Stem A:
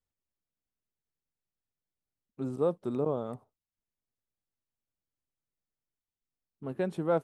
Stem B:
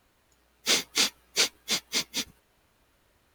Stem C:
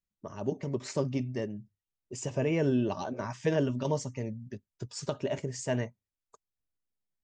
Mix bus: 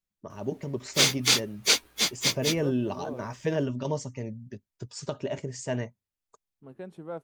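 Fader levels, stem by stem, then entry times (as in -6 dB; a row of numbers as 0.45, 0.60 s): -10.0, +2.5, 0.0 dB; 0.00, 0.30, 0.00 s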